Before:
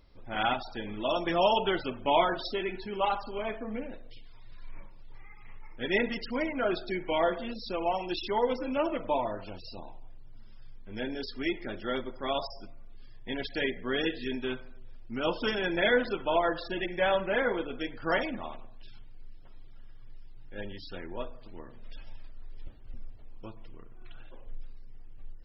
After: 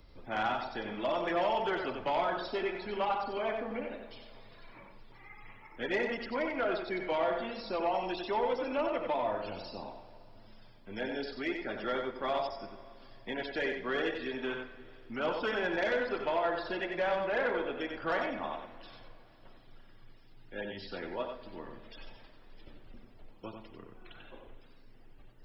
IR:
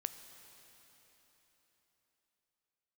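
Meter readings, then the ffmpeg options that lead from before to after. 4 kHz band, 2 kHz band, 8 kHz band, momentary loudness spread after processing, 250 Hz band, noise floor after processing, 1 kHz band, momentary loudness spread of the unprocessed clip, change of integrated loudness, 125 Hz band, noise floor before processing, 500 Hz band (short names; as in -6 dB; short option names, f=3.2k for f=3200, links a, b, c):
-6.5 dB, -2.5 dB, n/a, 20 LU, -4.5 dB, -55 dBFS, -2.5 dB, 18 LU, -3.0 dB, -6.0 dB, -46 dBFS, -2.5 dB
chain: -filter_complex "[0:a]acrossover=split=160|420|2000[a][b][c][d];[a]acompressor=threshold=-53dB:ratio=4[e];[b]acompressor=threshold=-48dB:ratio=4[f];[c]acompressor=threshold=-31dB:ratio=4[g];[d]acompressor=threshold=-52dB:ratio=4[h];[e][f][g][h]amix=inputs=4:normalize=0,aeval=exprs='0.1*sin(PI/2*1.58*val(0)/0.1)':c=same,asplit=2[i][j];[1:a]atrim=start_sample=2205,asetrate=57330,aresample=44100,adelay=92[k];[j][k]afir=irnorm=-1:irlink=0,volume=-1.5dB[l];[i][l]amix=inputs=2:normalize=0,volume=-5dB"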